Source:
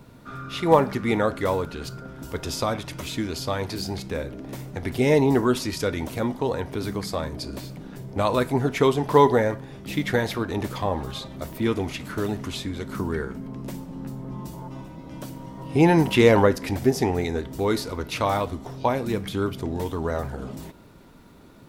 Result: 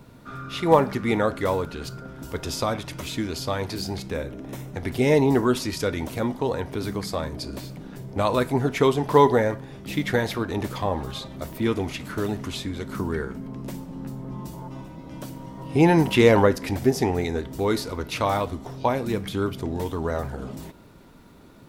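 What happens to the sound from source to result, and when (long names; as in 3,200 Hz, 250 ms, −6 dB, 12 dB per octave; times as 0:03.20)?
0:04.15–0:04.74: notch filter 4,600 Hz, Q 6.4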